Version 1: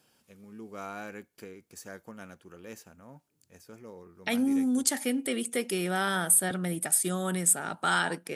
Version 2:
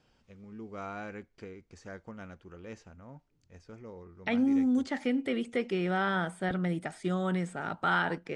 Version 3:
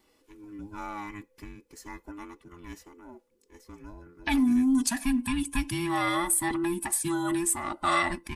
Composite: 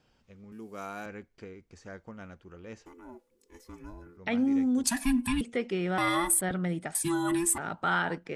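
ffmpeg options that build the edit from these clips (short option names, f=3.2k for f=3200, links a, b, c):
-filter_complex "[2:a]asplit=4[a][b][c][d];[1:a]asplit=6[e][f][g][h][i][j];[e]atrim=end=0.522[k];[0:a]atrim=start=0.518:end=1.062[l];[f]atrim=start=1.058:end=2.862[m];[a]atrim=start=2.858:end=4.172[n];[g]atrim=start=4.168:end=4.842[o];[b]atrim=start=4.838:end=5.412[p];[h]atrim=start=5.408:end=5.982[q];[c]atrim=start=5.978:end=6.412[r];[i]atrim=start=6.408:end=6.952[s];[d]atrim=start=6.948:end=7.582[t];[j]atrim=start=7.578[u];[k][l]acrossfade=d=0.004:c1=hsin:c2=hsin[v];[v][m]acrossfade=d=0.004:c1=hsin:c2=hsin[w];[w][n]acrossfade=d=0.004:c1=hsin:c2=hsin[x];[x][o]acrossfade=d=0.004:c1=hsin:c2=hsin[y];[y][p]acrossfade=d=0.004:c1=hsin:c2=hsin[z];[z][q]acrossfade=d=0.004:c1=hsin:c2=hsin[aa];[aa][r]acrossfade=d=0.004:c1=hsin:c2=hsin[ab];[ab][s]acrossfade=d=0.004:c1=hsin:c2=hsin[ac];[ac][t]acrossfade=d=0.004:c1=hsin:c2=hsin[ad];[ad][u]acrossfade=d=0.004:c1=hsin:c2=hsin"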